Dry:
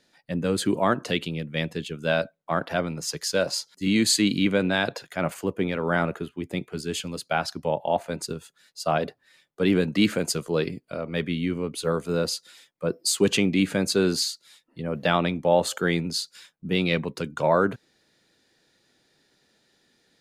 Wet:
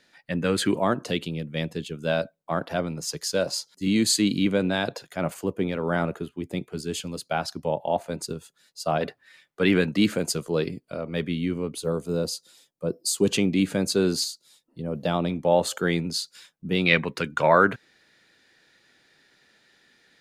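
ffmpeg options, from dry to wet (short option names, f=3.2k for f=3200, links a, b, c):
-af "asetnsamples=n=441:p=0,asendcmd='0.78 equalizer g -4.5;9.01 equalizer g 6.5;9.92 equalizer g -3;11.78 equalizer g -12;13.27 equalizer g -4.5;14.24 equalizer g -11.5;15.3 equalizer g -1.5;16.86 equalizer g 9.5',equalizer=f=1.9k:t=o:w=1.7:g=7"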